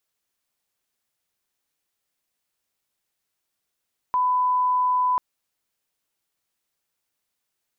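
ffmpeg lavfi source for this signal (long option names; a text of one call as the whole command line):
ffmpeg -f lavfi -i "sine=frequency=1000:duration=1.04:sample_rate=44100,volume=0.06dB" out.wav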